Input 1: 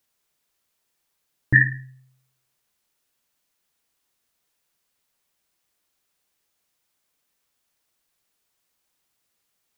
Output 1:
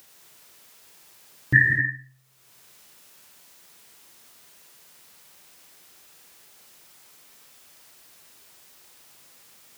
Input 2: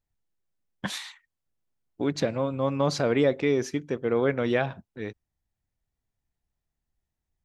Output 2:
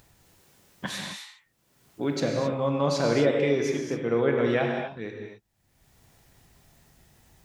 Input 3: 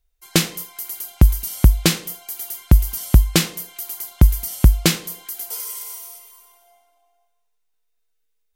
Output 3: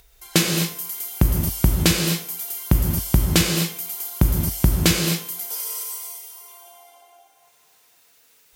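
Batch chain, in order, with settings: HPF 96 Hz 6 dB/oct; upward compressor, threshold -36 dBFS; non-linear reverb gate 0.29 s flat, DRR 1 dB; gain -1.5 dB

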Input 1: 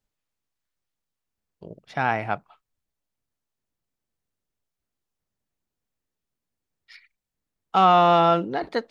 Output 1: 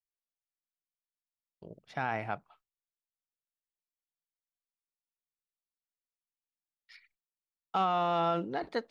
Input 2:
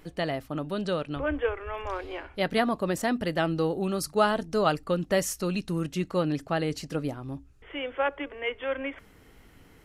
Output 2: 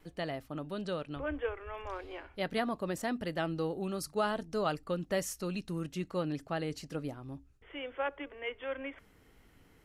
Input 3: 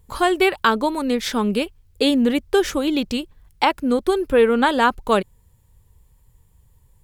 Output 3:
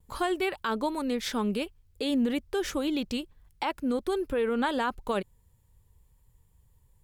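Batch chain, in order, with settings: limiter -12 dBFS; gate with hold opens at -49 dBFS; gain -7.5 dB

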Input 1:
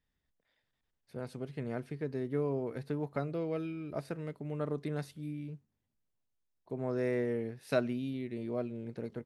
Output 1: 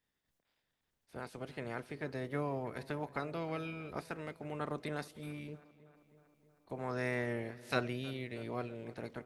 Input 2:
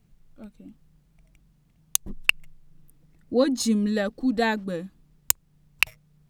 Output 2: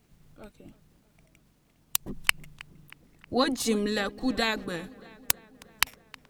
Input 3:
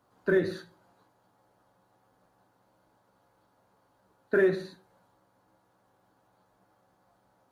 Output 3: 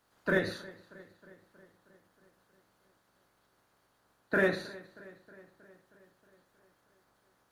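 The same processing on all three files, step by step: spectral limiter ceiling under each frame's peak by 16 dB; on a send: darkening echo 0.316 s, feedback 66%, low-pass 3800 Hz, level -20 dB; on the sum: gain -3.5 dB

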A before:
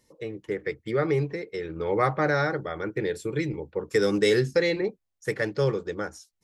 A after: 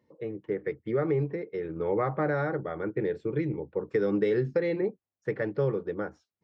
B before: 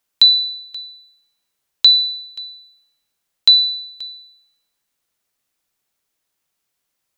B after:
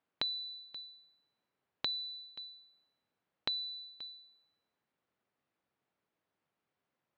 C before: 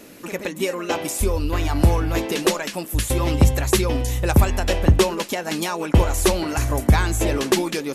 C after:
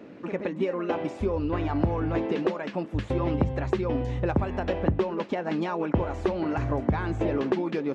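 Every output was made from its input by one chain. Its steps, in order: HPF 110 Hz 12 dB/oct; compressor 3:1, threshold -22 dBFS; tape spacing loss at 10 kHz 43 dB; gain +1.5 dB

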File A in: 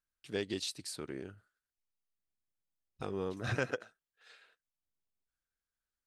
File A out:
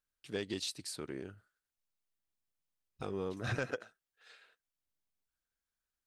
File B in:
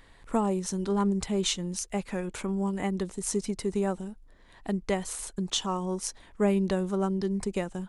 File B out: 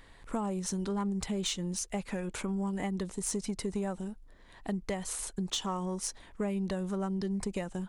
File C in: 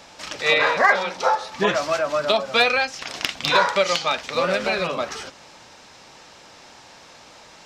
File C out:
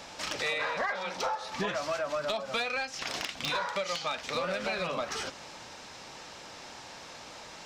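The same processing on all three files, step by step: dynamic EQ 370 Hz, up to -4 dB, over -36 dBFS; compressor 6:1, threshold -28 dBFS; soft clip -22.5 dBFS

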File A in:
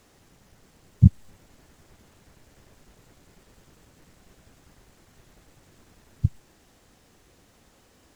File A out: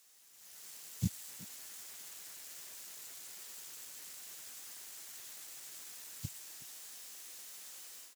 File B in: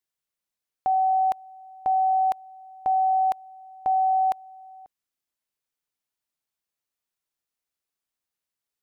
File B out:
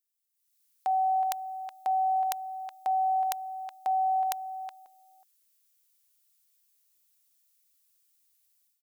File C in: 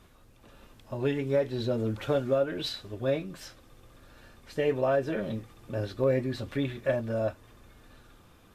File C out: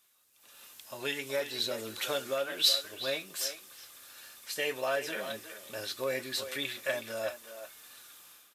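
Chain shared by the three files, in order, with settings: differentiator; AGC gain up to 15 dB; speakerphone echo 0.37 s, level -10 dB

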